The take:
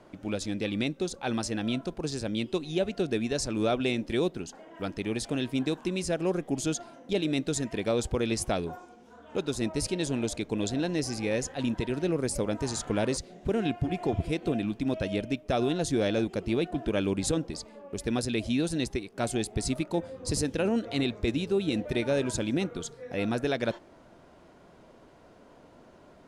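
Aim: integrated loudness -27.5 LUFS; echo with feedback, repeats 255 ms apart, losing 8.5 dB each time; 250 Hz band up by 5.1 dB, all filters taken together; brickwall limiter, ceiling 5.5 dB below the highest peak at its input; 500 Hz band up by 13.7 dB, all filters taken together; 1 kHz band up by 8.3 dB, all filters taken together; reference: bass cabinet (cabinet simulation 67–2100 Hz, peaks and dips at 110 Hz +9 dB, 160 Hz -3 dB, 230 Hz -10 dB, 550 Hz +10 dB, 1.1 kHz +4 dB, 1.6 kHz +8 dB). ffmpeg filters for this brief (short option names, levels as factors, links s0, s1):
-af "equalizer=f=250:t=o:g=7.5,equalizer=f=500:t=o:g=7.5,equalizer=f=1000:t=o:g=3.5,alimiter=limit=0.211:level=0:latency=1,highpass=f=67:w=0.5412,highpass=f=67:w=1.3066,equalizer=f=110:t=q:w=4:g=9,equalizer=f=160:t=q:w=4:g=-3,equalizer=f=230:t=q:w=4:g=-10,equalizer=f=550:t=q:w=4:g=10,equalizer=f=1100:t=q:w=4:g=4,equalizer=f=1600:t=q:w=4:g=8,lowpass=f=2100:w=0.5412,lowpass=f=2100:w=1.3066,aecho=1:1:255|510|765|1020:0.376|0.143|0.0543|0.0206,volume=0.531"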